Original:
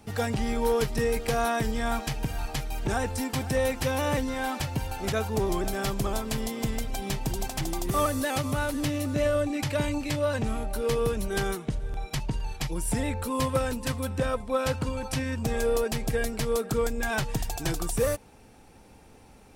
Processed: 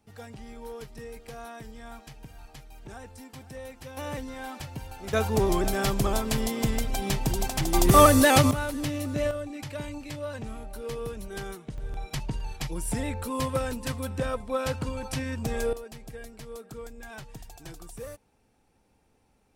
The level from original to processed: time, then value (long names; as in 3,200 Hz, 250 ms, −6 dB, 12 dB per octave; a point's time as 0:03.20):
−15.5 dB
from 0:03.97 −8 dB
from 0:05.13 +3 dB
from 0:07.74 +10 dB
from 0:08.51 −2 dB
from 0:09.31 −8.5 dB
from 0:11.78 −2 dB
from 0:15.73 −14.5 dB